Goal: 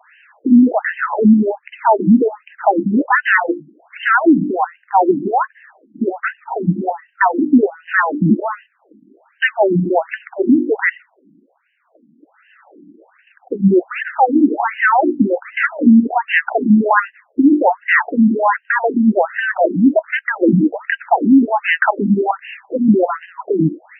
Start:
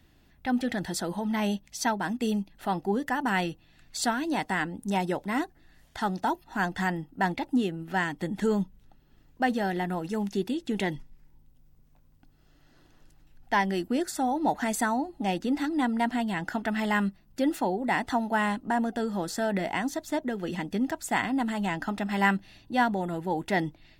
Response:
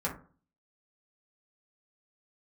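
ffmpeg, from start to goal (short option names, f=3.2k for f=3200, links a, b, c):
-af "bandreject=f=50:t=h:w=6,bandreject=f=100:t=h:w=6,bandreject=f=150:t=h:w=6,bandreject=f=200:t=h:w=6,bandreject=f=250:t=h:w=6,bandreject=f=300:t=h:w=6,bandreject=f=350:t=h:w=6,apsyclip=28.5dB,afftfilt=real='re*between(b*sr/1024,230*pow(2200/230,0.5+0.5*sin(2*PI*1.3*pts/sr))/1.41,230*pow(2200/230,0.5+0.5*sin(2*PI*1.3*pts/sr))*1.41)':imag='im*between(b*sr/1024,230*pow(2200/230,0.5+0.5*sin(2*PI*1.3*pts/sr))/1.41,230*pow(2200/230,0.5+0.5*sin(2*PI*1.3*pts/sr))*1.41)':win_size=1024:overlap=0.75,volume=-3dB"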